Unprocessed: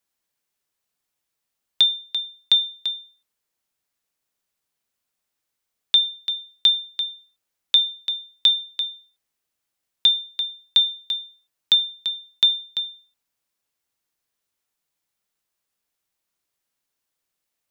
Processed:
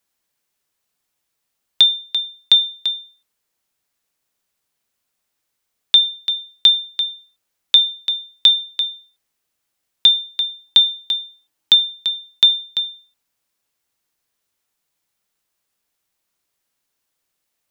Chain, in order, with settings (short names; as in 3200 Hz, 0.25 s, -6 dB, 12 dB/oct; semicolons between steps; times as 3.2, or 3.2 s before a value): 10.66–11.78 small resonant body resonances 300/840/3100 Hz, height 10 dB -> 7 dB; gain +5 dB